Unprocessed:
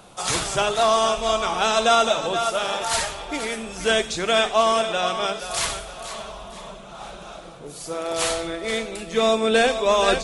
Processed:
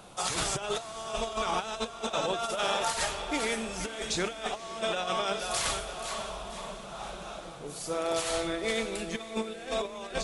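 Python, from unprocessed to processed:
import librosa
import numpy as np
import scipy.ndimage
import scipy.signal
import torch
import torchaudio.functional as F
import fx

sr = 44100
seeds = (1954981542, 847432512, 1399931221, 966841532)

y = fx.over_compress(x, sr, threshold_db=-25.0, ratio=-0.5)
y = fx.echo_diffused(y, sr, ms=554, feedback_pct=59, wet_db=-15.5)
y = y * 10.0 ** (-6.5 / 20.0)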